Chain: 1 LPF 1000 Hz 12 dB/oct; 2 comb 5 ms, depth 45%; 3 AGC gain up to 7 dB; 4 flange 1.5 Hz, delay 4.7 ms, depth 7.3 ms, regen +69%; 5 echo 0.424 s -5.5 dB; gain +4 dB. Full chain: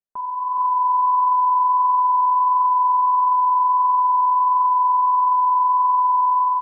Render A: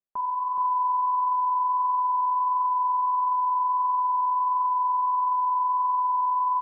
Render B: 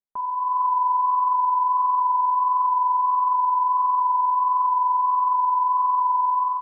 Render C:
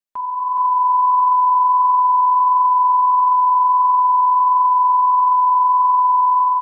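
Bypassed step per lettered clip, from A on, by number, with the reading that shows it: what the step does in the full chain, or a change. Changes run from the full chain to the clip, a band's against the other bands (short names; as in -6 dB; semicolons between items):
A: 3, momentary loudness spread change -1 LU; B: 5, loudness change -3.5 LU; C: 1, loudness change +3.0 LU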